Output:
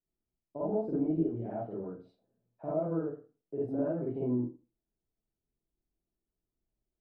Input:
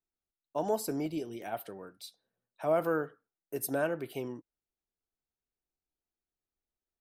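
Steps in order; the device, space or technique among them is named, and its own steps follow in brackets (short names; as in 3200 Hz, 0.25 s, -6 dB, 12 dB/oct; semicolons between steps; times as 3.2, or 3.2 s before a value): television next door (compressor 6:1, threshold -34 dBFS, peak gain reduction 10.5 dB; LPF 430 Hz 12 dB/oct; reverb RT60 0.35 s, pre-delay 43 ms, DRR -8 dB); gain +2 dB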